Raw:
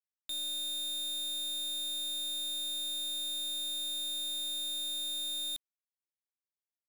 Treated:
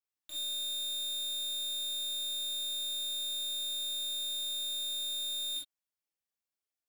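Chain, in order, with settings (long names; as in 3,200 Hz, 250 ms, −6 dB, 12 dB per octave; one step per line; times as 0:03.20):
reverb whose tail is shaped and stops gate 90 ms flat, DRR −7 dB
level −6.5 dB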